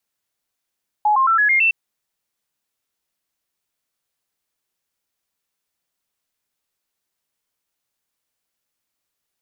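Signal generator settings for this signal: stepped sine 843 Hz up, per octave 3, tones 6, 0.11 s, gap 0.00 s -12.5 dBFS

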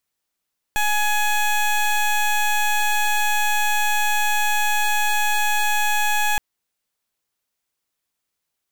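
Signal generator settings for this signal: pulse 840 Hz, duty 17% -19 dBFS 5.62 s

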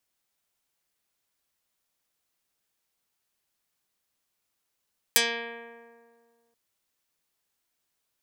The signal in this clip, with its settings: plucked string A#3, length 1.38 s, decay 1.99 s, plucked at 0.17, dark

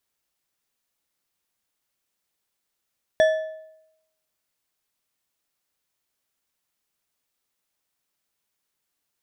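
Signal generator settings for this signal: metal hit bar, lowest mode 633 Hz, decay 0.84 s, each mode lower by 9 dB, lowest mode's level -12 dB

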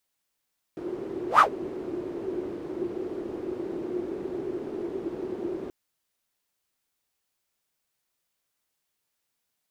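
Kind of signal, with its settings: whoosh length 4.93 s, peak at 0.63, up 0.12 s, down 0.10 s, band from 360 Hz, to 1300 Hz, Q 8.8, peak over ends 17 dB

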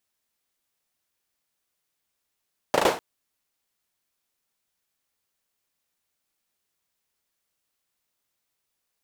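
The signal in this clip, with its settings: hand clap length 0.25 s, apart 37 ms, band 540 Hz, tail 0.37 s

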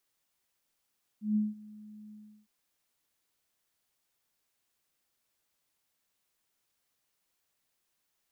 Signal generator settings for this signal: ADSR sine 212 Hz, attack 0.149 s, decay 0.182 s, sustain -22.5 dB, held 0.91 s, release 0.351 s -23.5 dBFS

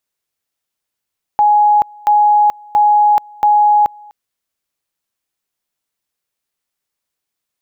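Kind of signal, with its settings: two-level tone 835 Hz -7 dBFS, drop 27.5 dB, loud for 0.43 s, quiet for 0.25 s, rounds 4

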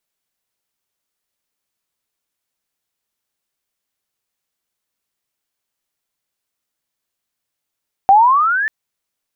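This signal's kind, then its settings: chirp logarithmic 760 Hz -> 1800 Hz -4.5 dBFS -> -16 dBFS 0.59 s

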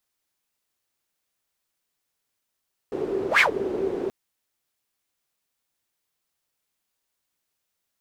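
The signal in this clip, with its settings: whoosh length 1.18 s, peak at 0.48, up 0.11 s, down 0.11 s, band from 390 Hz, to 2300 Hz, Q 8.2, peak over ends 12 dB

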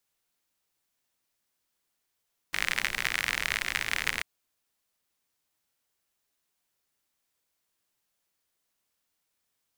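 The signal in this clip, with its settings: rain from filtered ticks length 1.69 s, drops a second 60, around 2000 Hz, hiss -13 dB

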